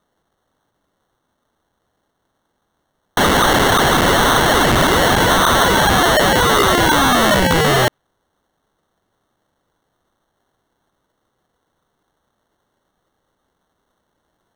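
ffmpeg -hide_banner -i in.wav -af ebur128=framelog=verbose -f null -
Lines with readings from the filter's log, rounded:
Integrated loudness:
  I:         -12.9 LUFS
  Threshold: -27.3 LUFS
Loudness range:
  LRA:         9.5 LU
  Threshold: -36.5 LUFS
  LRA low:   -22.0 LUFS
  LRA high:  -12.5 LUFS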